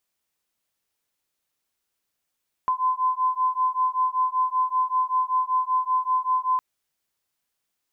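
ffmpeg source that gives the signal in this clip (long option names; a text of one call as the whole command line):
ffmpeg -f lavfi -i "aevalsrc='0.0668*(sin(2*PI*1020*t)+sin(2*PI*1025.2*t))':duration=3.91:sample_rate=44100" out.wav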